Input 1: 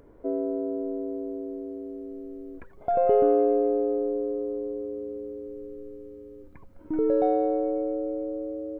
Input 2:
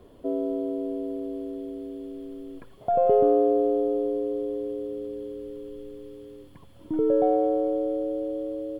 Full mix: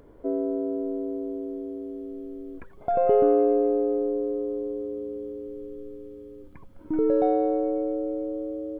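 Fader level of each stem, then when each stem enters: +1.5, −15.0 decibels; 0.00, 0.00 seconds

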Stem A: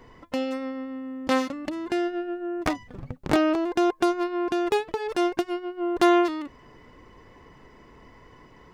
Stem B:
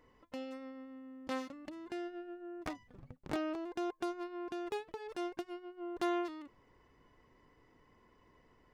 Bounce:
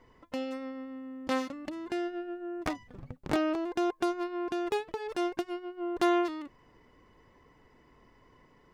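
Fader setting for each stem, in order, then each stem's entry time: −11.5, 0.0 decibels; 0.00, 0.00 seconds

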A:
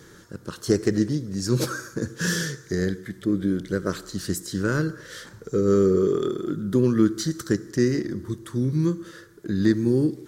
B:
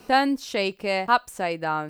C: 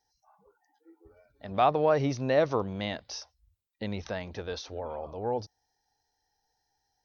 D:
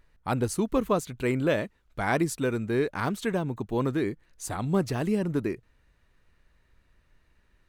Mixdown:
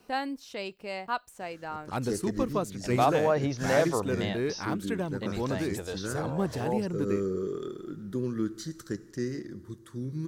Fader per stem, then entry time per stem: −11.5, −11.5, −1.0, −4.5 decibels; 1.40, 0.00, 1.40, 1.65 seconds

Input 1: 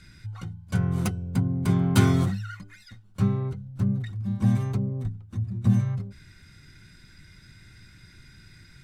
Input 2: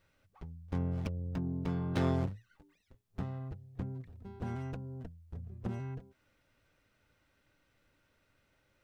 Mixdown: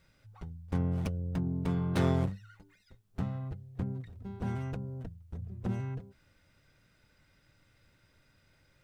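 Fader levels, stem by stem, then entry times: −18.5, +2.5 decibels; 0.00, 0.00 seconds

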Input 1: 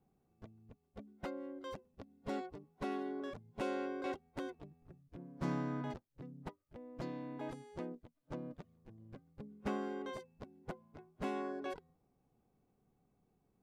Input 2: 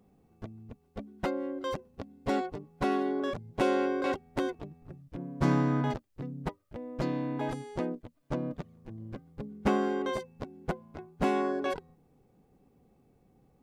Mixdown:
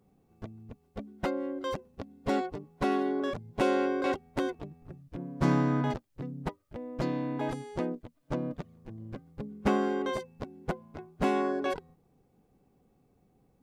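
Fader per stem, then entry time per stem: +3.0, −3.5 decibels; 0.00, 0.00 seconds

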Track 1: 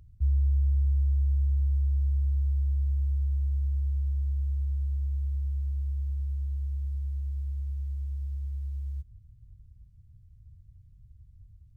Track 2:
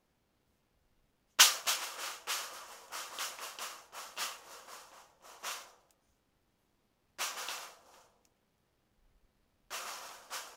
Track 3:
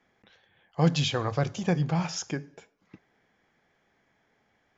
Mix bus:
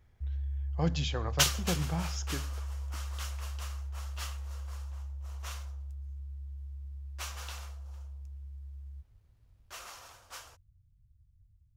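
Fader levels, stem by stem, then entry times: −11.0, −4.0, −7.5 decibels; 0.00, 0.00, 0.00 seconds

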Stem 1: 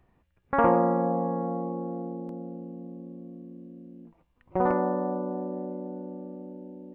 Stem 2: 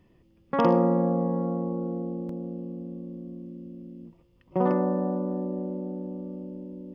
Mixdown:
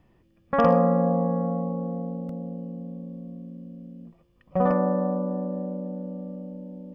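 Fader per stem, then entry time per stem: −0.5, −2.0 decibels; 0.00, 0.00 seconds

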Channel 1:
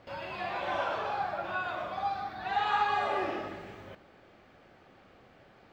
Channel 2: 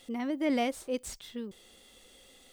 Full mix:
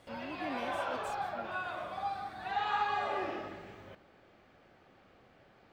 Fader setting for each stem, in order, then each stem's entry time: −4.0, −12.5 decibels; 0.00, 0.00 seconds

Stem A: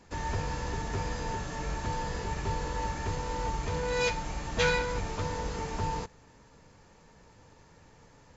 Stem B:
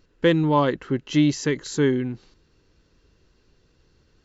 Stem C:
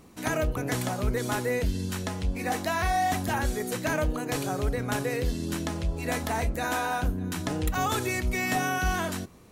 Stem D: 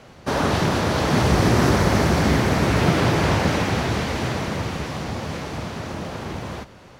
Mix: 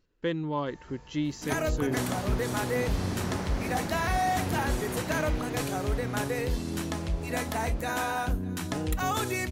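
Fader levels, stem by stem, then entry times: −19.0, −11.5, −1.5, −17.0 decibels; 0.55, 0.00, 1.25, 1.65 seconds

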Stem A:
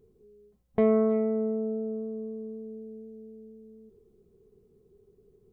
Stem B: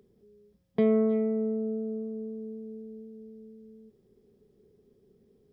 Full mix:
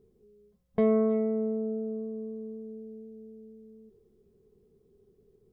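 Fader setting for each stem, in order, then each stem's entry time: −3.0, −9.0 decibels; 0.00, 0.00 seconds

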